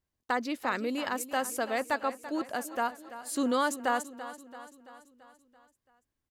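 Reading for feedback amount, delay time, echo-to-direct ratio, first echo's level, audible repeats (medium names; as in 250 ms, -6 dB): 55%, 336 ms, -12.5 dB, -14.0 dB, 5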